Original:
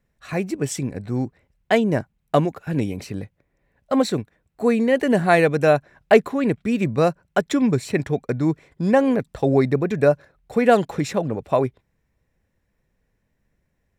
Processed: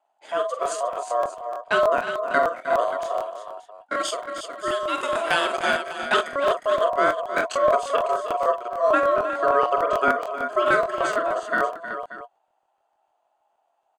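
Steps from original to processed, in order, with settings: 3.93–6.27 tilt shelf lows -7 dB, about 1200 Hz; ring modulator 840 Hz; speaker cabinet 460–9500 Hz, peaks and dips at 660 Hz +9 dB, 970 Hz -4 dB, 2500 Hz -6 dB, 5300 Hz -8 dB; tapped delay 46/311/360/582 ms -8.5/-12/-8.5/-14.5 dB; crackling interface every 0.15 s, samples 1024, repeat, from 0.61

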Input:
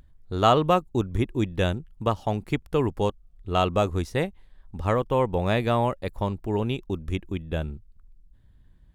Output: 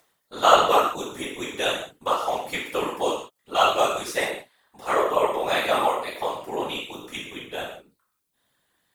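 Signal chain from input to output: HPF 580 Hz 12 dB/oct; high shelf 5700 Hz +11.5 dB; non-linear reverb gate 0.21 s falling, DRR -6.5 dB; whisperiser; gain -2.5 dB

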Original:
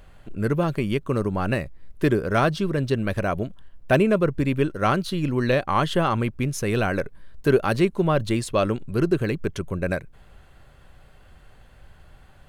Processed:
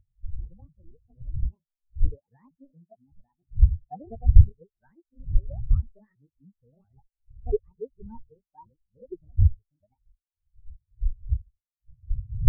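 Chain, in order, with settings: repeated pitch sweeps +10.5 st, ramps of 0.228 s; wind noise 97 Hz -23 dBFS; spectral expander 4:1; gain +2.5 dB

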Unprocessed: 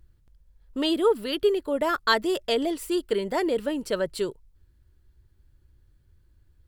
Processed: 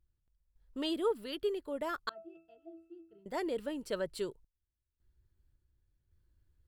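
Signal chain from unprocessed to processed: 2.09–3.26 octave resonator E, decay 0.35 s; random-step tremolo 1.8 Hz, depth 90%; gain -9 dB

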